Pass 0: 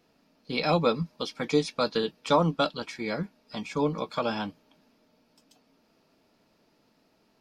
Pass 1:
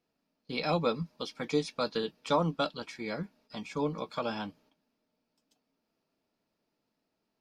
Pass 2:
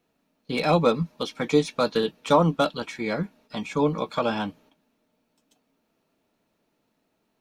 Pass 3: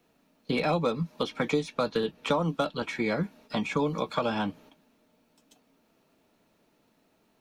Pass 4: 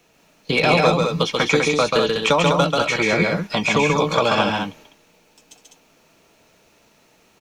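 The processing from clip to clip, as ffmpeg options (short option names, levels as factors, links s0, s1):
-af "agate=range=0.316:threshold=0.00126:ratio=16:detection=peak,volume=0.562"
-filter_complex "[0:a]equalizer=f=4900:w=6.2:g=-10.5,acrossover=split=1200[s0][s1];[s1]asoftclip=type=tanh:threshold=0.0224[s2];[s0][s2]amix=inputs=2:normalize=0,volume=2.82"
-filter_complex "[0:a]acrossover=split=120|3300[s0][s1][s2];[s0]acompressor=threshold=0.00316:ratio=4[s3];[s1]acompressor=threshold=0.0282:ratio=4[s4];[s2]acompressor=threshold=0.00251:ratio=4[s5];[s3][s4][s5]amix=inputs=3:normalize=0,volume=1.78"
-af "equalizer=f=250:t=o:w=0.67:g=-7,equalizer=f=2500:t=o:w=0.67:g=5,equalizer=f=6300:t=o:w=0.67:g=8,aecho=1:1:137|201.2:0.708|0.562,volume=2.82"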